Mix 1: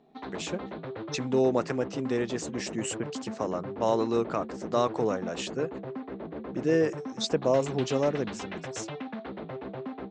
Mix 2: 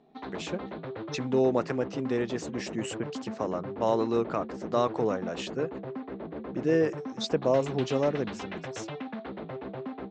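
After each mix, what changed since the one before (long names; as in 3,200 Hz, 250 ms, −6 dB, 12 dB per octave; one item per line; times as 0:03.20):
background: remove high-frequency loss of the air 56 metres
master: add high-frequency loss of the air 75 metres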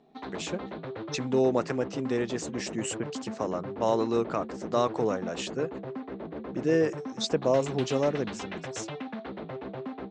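master: remove high-frequency loss of the air 75 metres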